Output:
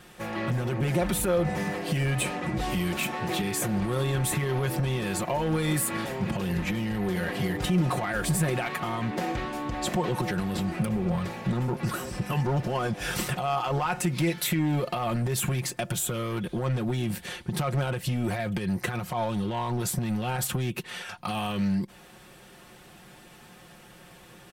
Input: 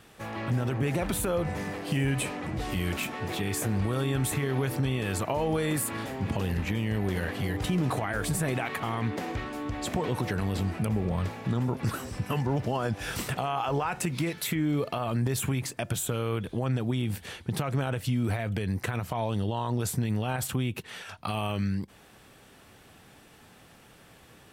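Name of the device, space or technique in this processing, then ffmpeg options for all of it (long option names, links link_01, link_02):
limiter into clipper: -af "alimiter=limit=-20dB:level=0:latency=1:release=154,asoftclip=type=hard:threshold=-24.5dB,aecho=1:1:5.6:0.63,volume=2.5dB"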